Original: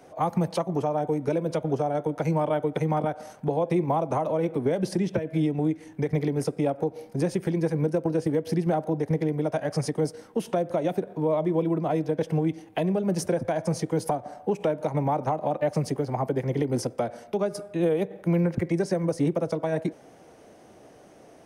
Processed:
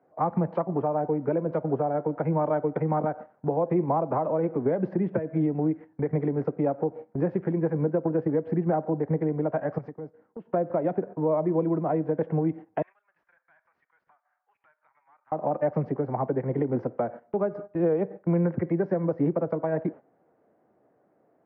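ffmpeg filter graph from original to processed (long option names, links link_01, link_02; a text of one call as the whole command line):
ffmpeg -i in.wav -filter_complex "[0:a]asettb=1/sr,asplit=3[link_01][link_02][link_03];[link_01]atrim=end=9.784[link_04];[link_02]atrim=start=9.78:end=10.46,asetpts=PTS-STARTPTS,afade=type=in:duration=0.004:curve=qsin,afade=type=out:start_time=0.676:duration=0.004:curve=qsin,acompressor=threshold=-35dB:ratio=4:attack=3.2:release=140:knee=1:detection=peak,agate=range=-33dB:threshold=-49dB:ratio=3:release=100:detection=peak[link_05];[link_03]atrim=start=10.456[link_06];[link_04][link_05]acrossfade=duration=0.004:curve1=hsin:curve2=qsin[link_07];[link_07][link_06]acrossfade=duration=0.004:curve1=qsin:curve2=hsin,asettb=1/sr,asplit=3[link_08][link_09][link_10];[link_08]atrim=end=12.824[link_11];[link_09]atrim=start=12.82:end=15.32,asetpts=PTS-STARTPTS,afade=type=in:duration=0.004:curve=qsin,afade=type=out:start_time=2.496:duration=0.004:curve=qsin,highpass=frequency=1400:width=0.5412,highpass=frequency=1400:width=1.3066,aeval=exprs='(tanh(79.4*val(0)+0.35)-tanh(0.35))/79.4':channel_layout=same[link_12];[link_10]atrim=start=15.316[link_13];[link_11][link_12]acrossfade=duration=0.004:curve1=hsin:curve2=qsin[link_14];[link_14][link_13]acrossfade=duration=0.004:curve1=qsin:curve2=hsin,highpass=120,agate=range=-14dB:threshold=-38dB:ratio=16:detection=peak,lowpass=frequency=1700:width=0.5412,lowpass=frequency=1700:width=1.3066" out.wav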